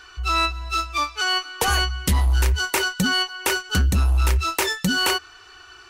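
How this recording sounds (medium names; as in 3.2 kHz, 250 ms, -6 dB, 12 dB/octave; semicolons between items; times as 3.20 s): noise floor -47 dBFS; spectral tilt -4.0 dB/octave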